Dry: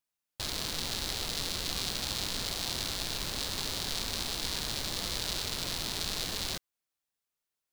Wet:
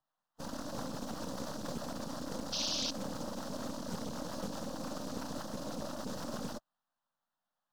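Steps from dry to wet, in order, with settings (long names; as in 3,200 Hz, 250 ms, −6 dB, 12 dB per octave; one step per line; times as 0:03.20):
Chebyshev band-stop filter 310–5,600 Hz, order 3
ring modulation 100 Hz
in parallel at −3 dB: brickwall limiter −29 dBFS, peak gain reduction 8 dB
on the sum: phase-vocoder pitch shift with formants kept −6.5 semitones
full-wave rectification
three-way crossover with the lows and the highs turned down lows −19 dB, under 160 Hz, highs −22 dB, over 3,300 Hz
sound drawn into the spectrogram noise, 0:02.52–0:02.91, 2,500–5,900 Hz −46 dBFS
phaser with its sweep stopped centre 940 Hz, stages 4
highs frequency-modulated by the lows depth 0.57 ms
level +14.5 dB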